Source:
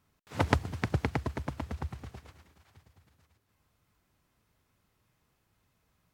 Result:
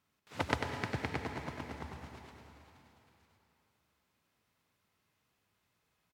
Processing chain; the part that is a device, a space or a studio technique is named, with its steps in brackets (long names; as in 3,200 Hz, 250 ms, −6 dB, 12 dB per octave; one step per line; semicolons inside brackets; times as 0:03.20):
PA in a hall (high-pass filter 160 Hz 6 dB per octave; parametric band 3,100 Hz +4 dB 2.1 octaves; single-tap delay 96 ms −7 dB; convolution reverb RT60 3.2 s, pre-delay 90 ms, DRR 5 dB)
level −6.5 dB